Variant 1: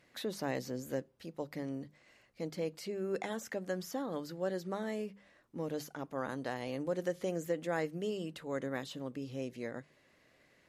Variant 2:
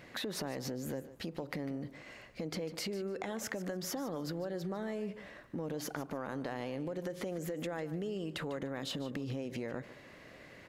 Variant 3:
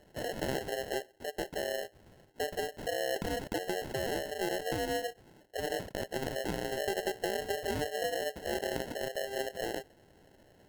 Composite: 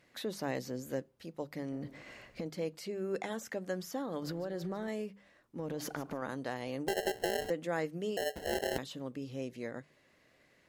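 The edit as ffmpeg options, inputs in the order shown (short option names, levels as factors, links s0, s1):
-filter_complex "[1:a]asplit=3[s0][s1][s2];[2:a]asplit=2[s3][s4];[0:a]asplit=6[s5][s6][s7][s8][s9][s10];[s5]atrim=end=1.722[s11];[s0]atrim=start=1.718:end=2.462[s12];[s6]atrim=start=2.458:end=4.222[s13];[s1]atrim=start=4.218:end=4.882[s14];[s7]atrim=start=4.878:end=5.602[s15];[s2]atrim=start=5.598:end=6.222[s16];[s8]atrim=start=6.218:end=6.882[s17];[s3]atrim=start=6.878:end=7.502[s18];[s9]atrim=start=7.498:end=8.172[s19];[s4]atrim=start=8.168:end=8.782[s20];[s10]atrim=start=8.778[s21];[s11][s12]acrossfade=d=0.004:c1=hsin:c2=hsin[s22];[s22][s13]acrossfade=d=0.004:c1=hsin:c2=hsin[s23];[s23][s14]acrossfade=d=0.004:c1=hsin:c2=hsin[s24];[s24][s15]acrossfade=d=0.004:c1=hsin:c2=hsin[s25];[s25][s16]acrossfade=d=0.004:c1=hsin:c2=hsin[s26];[s26][s17]acrossfade=d=0.004:c1=hsin:c2=hsin[s27];[s27][s18]acrossfade=d=0.004:c1=hsin:c2=hsin[s28];[s28][s19]acrossfade=d=0.004:c1=hsin:c2=hsin[s29];[s29][s20]acrossfade=d=0.004:c1=hsin:c2=hsin[s30];[s30][s21]acrossfade=d=0.004:c1=hsin:c2=hsin"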